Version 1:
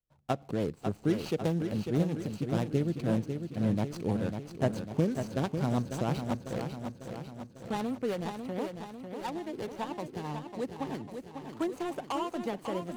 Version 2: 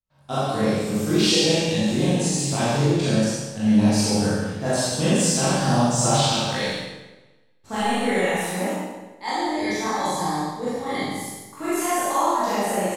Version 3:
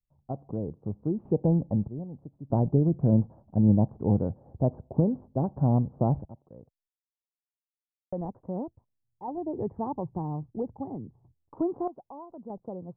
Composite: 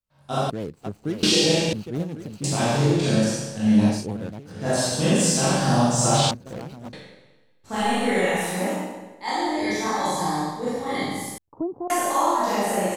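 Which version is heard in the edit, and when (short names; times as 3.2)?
2
0.5–1.23 from 1
1.73–2.44 from 1
3.95–4.57 from 1, crossfade 0.24 s
6.31–6.93 from 1
11.38–11.9 from 3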